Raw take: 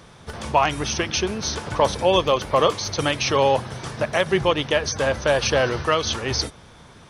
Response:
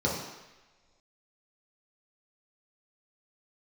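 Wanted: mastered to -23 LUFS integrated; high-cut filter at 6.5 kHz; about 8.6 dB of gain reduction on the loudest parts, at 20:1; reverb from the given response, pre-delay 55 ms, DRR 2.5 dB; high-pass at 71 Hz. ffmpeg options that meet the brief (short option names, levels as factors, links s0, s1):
-filter_complex "[0:a]highpass=71,lowpass=6500,acompressor=threshold=0.0891:ratio=20,asplit=2[s0][s1];[1:a]atrim=start_sample=2205,adelay=55[s2];[s1][s2]afir=irnorm=-1:irlink=0,volume=0.211[s3];[s0][s3]amix=inputs=2:normalize=0,volume=1.06"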